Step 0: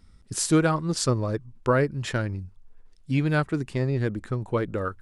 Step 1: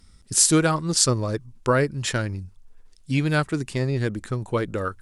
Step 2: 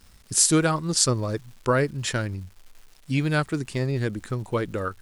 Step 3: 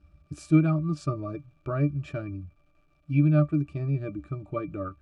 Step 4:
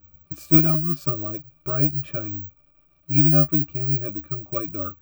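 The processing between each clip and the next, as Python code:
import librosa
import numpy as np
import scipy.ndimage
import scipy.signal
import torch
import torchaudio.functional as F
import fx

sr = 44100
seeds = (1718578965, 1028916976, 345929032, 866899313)

y1 = fx.peak_eq(x, sr, hz=9000.0, db=10.0, octaves=2.5)
y1 = y1 * 10.0 ** (1.0 / 20.0)
y2 = fx.dmg_crackle(y1, sr, seeds[0], per_s=400.0, level_db=-42.0)
y2 = y2 * 10.0 ** (-1.5 / 20.0)
y3 = fx.octave_resonator(y2, sr, note='D', decay_s=0.1)
y3 = y3 * 10.0 ** (5.0 / 20.0)
y4 = (np.kron(y3[::2], np.eye(2)[0]) * 2)[:len(y3)]
y4 = y4 * 10.0 ** (1.5 / 20.0)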